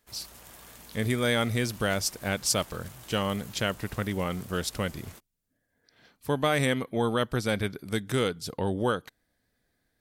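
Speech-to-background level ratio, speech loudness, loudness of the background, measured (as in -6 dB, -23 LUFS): 19.0 dB, -29.0 LUFS, -48.0 LUFS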